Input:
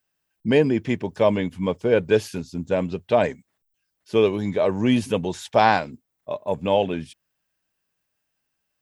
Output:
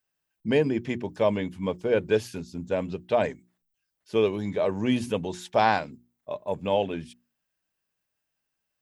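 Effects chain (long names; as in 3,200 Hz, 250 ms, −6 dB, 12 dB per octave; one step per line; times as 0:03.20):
mains-hum notches 60/120/180/240/300/360 Hz
level −4.5 dB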